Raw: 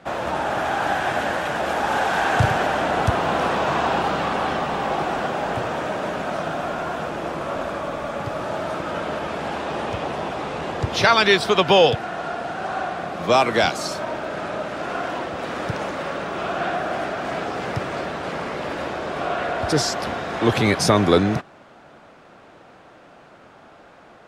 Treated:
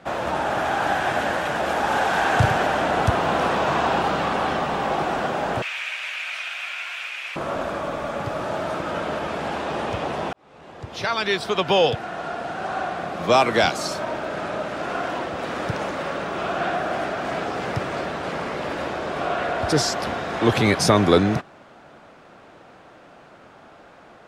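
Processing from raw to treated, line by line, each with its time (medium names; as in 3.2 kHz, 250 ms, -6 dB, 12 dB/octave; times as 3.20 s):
5.62–7.36 s: resonant high-pass 2.4 kHz, resonance Q 4.7
10.33–13.53 s: fade in equal-power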